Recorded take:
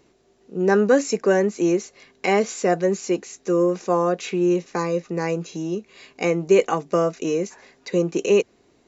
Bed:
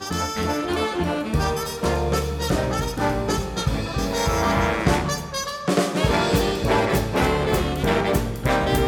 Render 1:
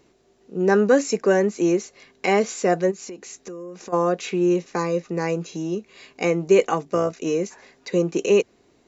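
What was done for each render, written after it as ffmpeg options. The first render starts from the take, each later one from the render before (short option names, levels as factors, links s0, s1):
-filter_complex "[0:a]asplit=3[s0][s1][s2];[s0]afade=t=out:st=2.9:d=0.02[s3];[s1]acompressor=threshold=0.0224:ratio=8:attack=3.2:release=140:knee=1:detection=peak,afade=t=in:st=2.9:d=0.02,afade=t=out:st=3.92:d=0.02[s4];[s2]afade=t=in:st=3.92:d=0.02[s5];[s3][s4][s5]amix=inputs=3:normalize=0,asettb=1/sr,asplit=3[s6][s7][s8];[s6]atrim=end=6.854[s9];[s7]atrim=start=6.85:end=7.26,asetpts=PTS-STARTPTS,afade=t=in:d=0.004:c=qsin,afade=t=out:st=0.406:d=0.004:c=qsin,tremolo=f=63:d=0.4[s10];[s8]atrim=start=7.256[s11];[s9][s10]acrossfade=d=0.004:c1=hsin:c2=qsin[s12];[s12][s11]acrossfade=d=0.004:c1=qsin:c2=hsin"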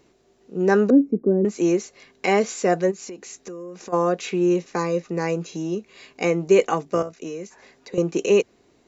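-filter_complex "[0:a]asettb=1/sr,asplit=3[s0][s1][s2];[s0]atrim=end=0.904[s3];[s1]atrim=start=0.9:end=1.45,asetpts=PTS-STARTPTS,afade=t=in:d=0.004:c=qsin,afade=t=out:st=0.546:d=0.004:c=qsin,lowpass=f=280:t=q:w=2.5[s4];[s2]atrim=start=1.446[s5];[s3][s4]acrossfade=d=0.004:c1=hsin:c2=qsin[s6];[s6][s5]acrossfade=d=0.004:c1=qsin:c2=hsin,asettb=1/sr,asplit=3[s7][s8][s9];[s7]atrim=end=7.024[s10];[s8]atrim=start=7.02:end=7.98,asetpts=PTS-STARTPTS,afade=t=in:d=0.004:c=qsin,afade=t=out:st=0.956:d=0.004:c=qsin,acrossover=split=120|960[s11][s12][s13];[s11]acompressor=threshold=0.00251:ratio=4[s14];[s12]acompressor=threshold=0.0251:ratio=4[s15];[s13]acompressor=threshold=0.00562:ratio=4[s16];[s14][s15][s16]amix=inputs=3:normalize=0[s17];[s9]atrim=start=7.976[s18];[s10][s17]acrossfade=d=0.004:c1=hsin:c2=qsin[s19];[s19][s18]acrossfade=d=0.004:c1=qsin:c2=hsin"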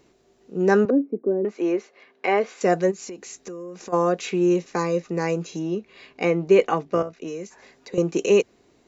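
-filter_complex "[0:a]asettb=1/sr,asplit=3[s0][s1][s2];[s0]atrim=end=0.854[s3];[s1]atrim=start=0.85:end=2.61,asetpts=PTS-STARTPTS,afade=t=in:d=0.004:c=qsin,afade=t=out:st=1.756:d=0.004:c=qsin,highpass=350,lowpass=2600[s4];[s2]atrim=start=2.606[s5];[s3][s4]acrossfade=d=0.004:c1=hsin:c2=qsin[s6];[s6][s5]acrossfade=d=0.004:c1=qsin:c2=hsin,asettb=1/sr,asplit=3[s7][s8][s9];[s7]atrim=end=5.594[s10];[s8]atrim=start=5.59:end=7.28,asetpts=PTS-STARTPTS,afade=t=in:d=0.004:c=qsin,afade=t=out:st=1.686:d=0.004:c=qsin,lowpass=4100[s11];[s9]atrim=start=7.276[s12];[s10][s11]acrossfade=d=0.004:c1=hsin:c2=qsin[s13];[s13][s12]acrossfade=d=0.004:c1=qsin:c2=hsin"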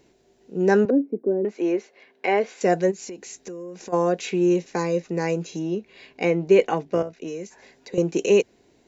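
-af "equalizer=f=1200:t=o:w=0.22:g=-11"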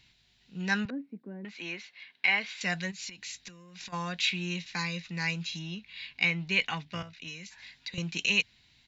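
-af "firequalizer=gain_entry='entry(110,0);entry(390,-28);entry(950,-8);entry(2100,4);entry(3800,10);entry(6300,-5)':delay=0.05:min_phase=1"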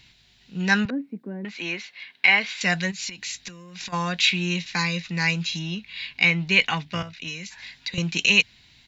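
-af "volume=2.66,alimiter=limit=0.708:level=0:latency=1"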